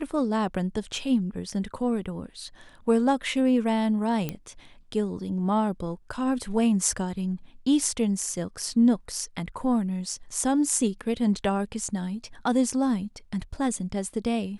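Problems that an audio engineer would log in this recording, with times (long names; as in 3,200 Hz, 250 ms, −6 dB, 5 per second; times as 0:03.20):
0:04.29: click −15 dBFS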